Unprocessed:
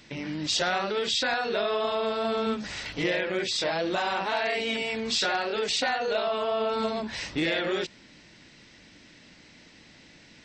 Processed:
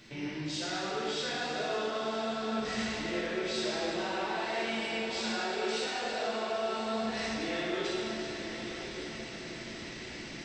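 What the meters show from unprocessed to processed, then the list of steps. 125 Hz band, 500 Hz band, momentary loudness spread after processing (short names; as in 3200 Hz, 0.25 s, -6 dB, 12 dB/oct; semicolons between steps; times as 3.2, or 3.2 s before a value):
-3.5 dB, -5.5 dB, 8 LU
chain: bell 360 Hz +5 dB 0.24 oct; reverse; compressor 8:1, threshold -41 dBFS, peak gain reduction 20 dB; reverse; diffused feedback echo 1.04 s, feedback 41%, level -8.5 dB; plate-style reverb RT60 2.5 s, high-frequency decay 0.85×, DRR -8.5 dB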